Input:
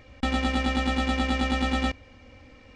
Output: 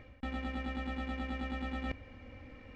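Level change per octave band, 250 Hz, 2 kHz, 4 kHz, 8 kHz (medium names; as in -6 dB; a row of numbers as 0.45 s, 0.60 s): -12.5 dB, -13.0 dB, -18.5 dB, under -20 dB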